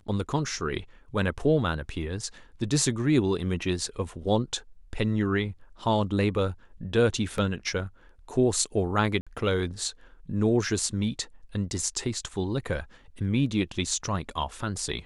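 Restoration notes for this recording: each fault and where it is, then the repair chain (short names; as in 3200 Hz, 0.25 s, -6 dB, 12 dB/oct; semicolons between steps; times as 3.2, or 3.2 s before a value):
7.38 gap 2.1 ms
9.21–9.27 gap 56 ms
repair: interpolate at 7.38, 2.1 ms; interpolate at 9.21, 56 ms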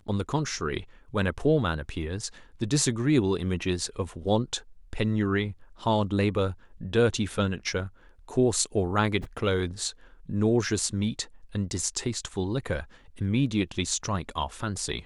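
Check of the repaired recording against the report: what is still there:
none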